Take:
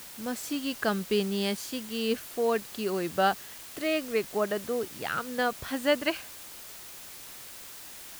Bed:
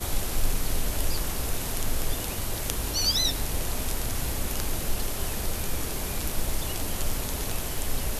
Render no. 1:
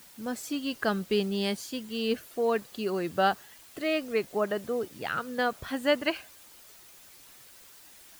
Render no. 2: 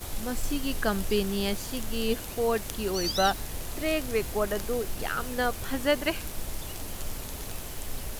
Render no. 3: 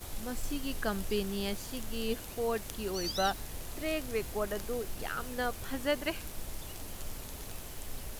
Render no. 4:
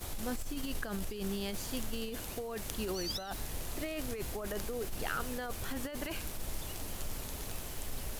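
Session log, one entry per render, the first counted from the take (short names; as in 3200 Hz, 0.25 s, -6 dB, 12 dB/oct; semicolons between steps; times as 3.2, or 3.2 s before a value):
denoiser 9 dB, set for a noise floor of -45 dBFS
add bed -7 dB
gain -6 dB
negative-ratio compressor -36 dBFS, ratio -1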